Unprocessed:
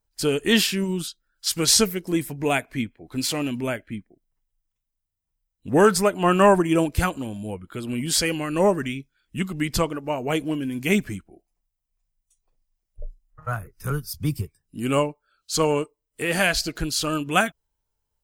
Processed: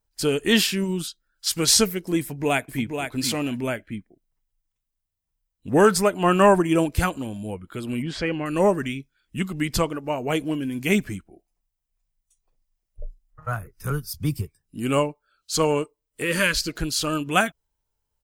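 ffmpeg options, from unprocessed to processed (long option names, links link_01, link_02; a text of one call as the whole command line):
ffmpeg -i in.wav -filter_complex "[0:a]asplit=2[link_01][link_02];[link_02]afade=type=in:start_time=2.2:duration=0.01,afade=type=out:start_time=2.98:duration=0.01,aecho=0:1:480|960:0.473151|0.0473151[link_03];[link_01][link_03]amix=inputs=2:normalize=0,asettb=1/sr,asplit=3[link_04][link_05][link_06];[link_04]atrim=end=8.024[link_07];[link_05]atrim=start=8.02:end=8.46,asetpts=PTS-STARTPTS,afade=type=in:duration=0.004:curve=qsin,afade=type=out:start_time=0.436:duration=0.004:curve=qsin,lowpass=2300[link_08];[link_06]atrim=start=8.456[link_09];[link_07][link_08]acrossfade=duration=0.004:curve1=hsin:curve2=qsin[link_10];[link_10][link_09]acrossfade=duration=0.004:curve1=qsin:curve2=hsin,asettb=1/sr,asplit=3[link_11][link_12][link_13];[link_11]atrim=end=16.234[link_14];[link_12]atrim=start=16.23:end=16.71,asetpts=PTS-STARTPTS,afade=type=in:duration=0.004:curve=qsin,afade=type=out:start_time=0.476:duration=0.004:curve=qsin,asuperstop=centerf=740:order=12:qfactor=2.7[link_15];[link_13]atrim=start=16.706[link_16];[link_14][link_15]acrossfade=duration=0.004:curve1=hsin:curve2=qsin[link_17];[link_17][link_16]acrossfade=duration=0.004:curve1=qsin:curve2=hsin" out.wav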